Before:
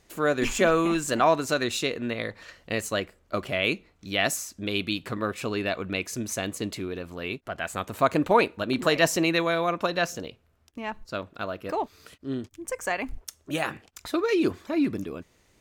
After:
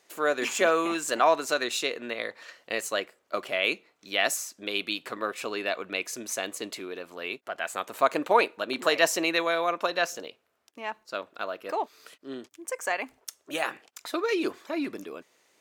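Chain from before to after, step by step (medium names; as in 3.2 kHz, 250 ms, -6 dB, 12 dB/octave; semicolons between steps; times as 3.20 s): high-pass 420 Hz 12 dB/octave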